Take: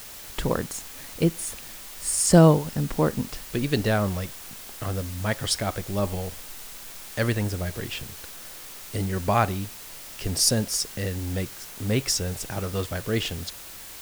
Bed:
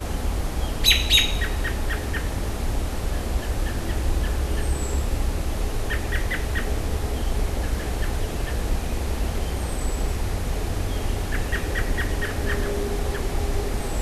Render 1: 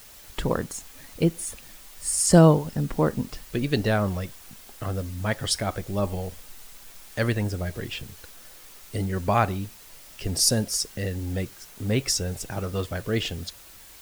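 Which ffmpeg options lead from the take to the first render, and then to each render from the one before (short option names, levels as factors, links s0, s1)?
-af "afftdn=nr=7:nf=-41"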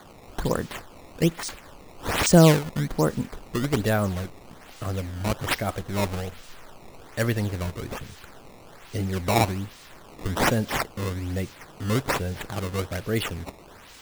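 -af "acrusher=samples=16:mix=1:aa=0.000001:lfo=1:lforange=25.6:lforate=1.2"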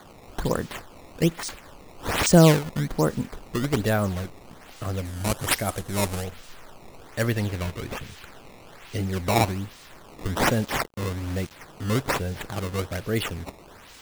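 -filter_complex "[0:a]asettb=1/sr,asplit=3[s0][s1][s2];[s0]atrim=end=5.054[s3];[s1]atrim=start=5.05:end=6.24,asetpts=PTS-STARTPTS,afade=t=in:d=0.004:c=qsin,afade=t=out:st=1.186:d=0.004:c=qsin,equalizer=f=10000:t=o:w=1.3:g=10[s4];[s2]atrim=start=6.236[s5];[s3][s4]acrossfade=d=0.004:c1=hsin:c2=qsin[s6];[s6][s5]acrossfade=d=0.004:c1=qsin:c2=hsin,asettb=1/sr,asplit=3[s7][s8][s9];[s7]atrim=end=7.364[s10];[s8]atrim=start=7.36:end=9,asetpts=PTS-STARTPTS,afade=t=in:d=0.004:c=qsin,afade=t=out:st=1.636:d=0.004:c=qsin,equalizer=f=2600:w=1.1:g=4[s11];[s9]atrim=start=8.996[s12];[s10][s11]acrossfade=d=0.004:c1=hsin:c2=qsin[s13];[s13][s12]acrossfade=d=0.004:c1=qsin:c2=hsin,asettb=1/sr,asplit=3[s14][s15][s16];[s14]atrim=end=10.474[s17];[s15]atrim=start=10.47:end=11.51,asetpts=PTS-STARTPTS,afade=t=in:d=0.004:c=qsin,afade=t=out:st=1.036:d=0.004:c=qsin,acrusher=bits=5:mix=0:aa=0.5[s18];[s16]atrim=start=11.506[s19];[s17][s18]acrossfade=d=0.004:c1=hsin:c2=qsin[s20];[s20][s19]acrossfade=d=0.004:c1=qsin:c2=hsin"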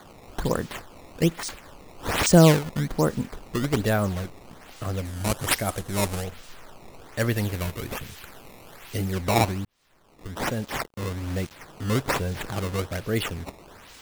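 -filter_complex "[0:a]asettb=1/sr,asplit=3[s0][s1][s2];[s0]atrim=end=7.324[s3];[s1]atrim=start=7.32:end=9.13,asetpts=PTS-STARTPTS,afade=t=in:d=0.004:c=qsin,afade=t=out:st=1.806:d=0.004:c=qsin,equalizer=f=14000:t=o:w=0.9:g=10[s4];[s2]atrim=start=9.126[s5];[s3][s4]acrossfade=d=0.004:c1=hsin:c2=qsin[s6];[s6][s5]acrossfade=d=0.004:c1=qsin:c2=hsin,asettb=1/sr,asplit=3[s7][s8][s9];[s7]atrim=end=12.164[s10];[s8]atrim=start=12.16:end=12.77,asetpts=PTS-STARTPTS,afade=t=in:d=0.004:c=qsin,afade=t=out:st=0.606:d=0.004:c=qsin,aeval=exprs='val(0)+0.5*0.0119*sgn(val(0))':c=same[s11];[s9]atrim=start=12.766[s12];[s10][s11]acrossfade=d=0.004:c1=hsin:c2=qsin[s13];[s13][s12]acrossfade=d=0.004:c1=qsin:c2=hsin,asplit=2[s14][s15];[s14]atrim=end=9.65,asetpts=PTS-STARTPTS,afade=t=out:st=9.646:d=0.004:c=hsin[s16];[s15]atrim=start=9.65,asetpts=PTS-STARTPTS,afade=t=in:d=1.69[s17];[s16][s17]concat=n=2:v=0:a=1"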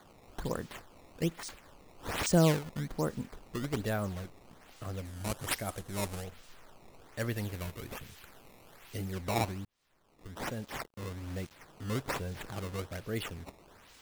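-af "volume=0.316"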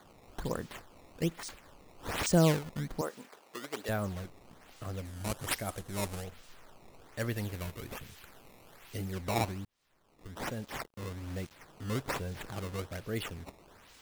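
-filter_complex "[0:a]asettb=1/sr,asplit=3[s0][s1][s2];[s0]atrim=end=3.014[s3];[s1]atrim=start=3.01:end=3.89,asetpts=PTS-STARTPTS,afade=t=in:d=0.004:c=qsin,afade=t=out:st=0.876:d=0.004:c=qsin,highpass=470[s4];[s2]atrim=start=3.886[s5];[s3][s4]acrossfade=d=0.004:c1=hsin:c2=qsin[s6];[s6][s5]acrossfade=d=0.004:c1=qsin:c2=hsin"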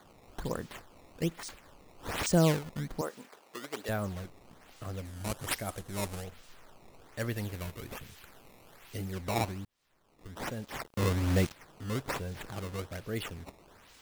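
-filter_complex "[0:a]asplit=3[s0][s1][s2];[s0]atrim=end=10.862[s3];[s1]atrim=start=10.858:end=11.522,asetpts=PTS-STARTPTS,volume=3.98[s4];[s2]atrim=start=11.518[s5];[s3][s4]acrossfade=d=0.004:c1=hsin:c2=hsin[s6];[s6][s5]acrossfade=d=0.004:c1=hsin:c2=hsin"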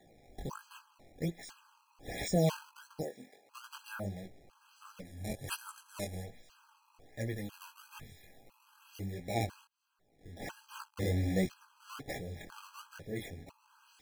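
-af "flanger=delay=16:depth=7.6:speed=1.4,afftfilt=real='re*gt(sin(2*PI*1*pts/sr)*(1-2*mod(floor(b*sr/1024/820),2)),0)':imag='im*gt(sin(2*PI*1*pts/sr)*(1-2*mod(floor(b*sr/1024/820),2)),0)':win_size=1024:overlap=0.75"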